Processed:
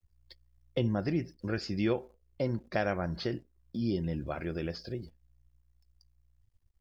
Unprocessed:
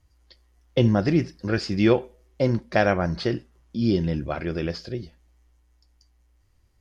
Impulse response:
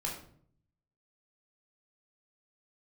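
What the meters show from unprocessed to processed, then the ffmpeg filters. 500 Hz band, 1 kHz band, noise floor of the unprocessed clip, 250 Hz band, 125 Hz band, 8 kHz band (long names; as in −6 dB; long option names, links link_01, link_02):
−10.0 dB, −10.0 dB, −63 dBFS, −9.5 dB, −9.5 dB, can't be measured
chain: -af "acrusher=bits=9:dc=4:mix=0:aa=0.000001,acompressor=threshold=-45dB:ratio=1.5,afftdn=noise_reduction=16:noise_floor=-55"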